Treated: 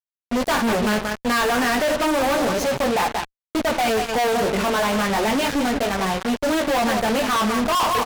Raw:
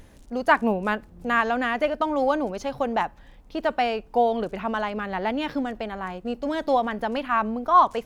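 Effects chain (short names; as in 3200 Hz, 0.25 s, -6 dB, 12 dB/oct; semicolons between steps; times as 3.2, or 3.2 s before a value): chorus 0.32 Hz, delay 15.5 ms, depth 4.9 ms; tapped delay 58/181 ms -18/-12 dB; fuzz box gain 45 dB, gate -39 dBFS; gain -5 dB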